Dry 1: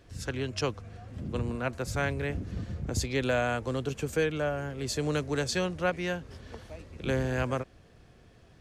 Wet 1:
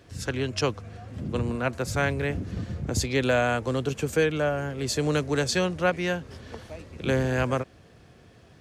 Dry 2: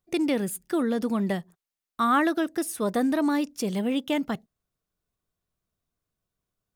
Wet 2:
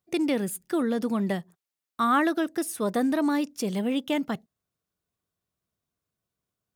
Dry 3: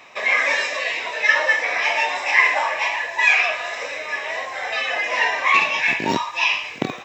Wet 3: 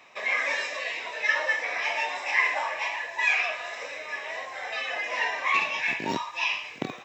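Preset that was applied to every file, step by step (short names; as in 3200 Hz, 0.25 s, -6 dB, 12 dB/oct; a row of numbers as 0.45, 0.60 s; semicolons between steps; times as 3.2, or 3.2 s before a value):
HPF 72 Hz; match loudness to -27 LUFS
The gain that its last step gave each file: +4.5, -0.5, -8.0 dB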